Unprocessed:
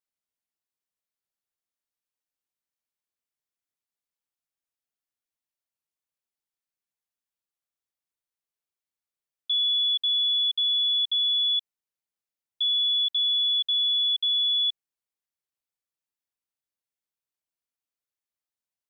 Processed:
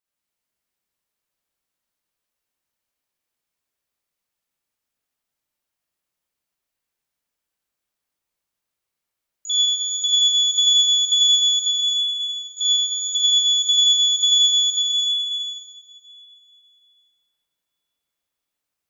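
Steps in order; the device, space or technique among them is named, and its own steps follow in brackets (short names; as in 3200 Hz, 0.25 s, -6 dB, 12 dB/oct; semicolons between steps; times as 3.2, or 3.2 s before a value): shimmer-style reverb (harmoniser +12 st -10 dB; reverb RT60 3.9 s, pre-delay 34 ms, DRR -8 dB); gain +1.5 dB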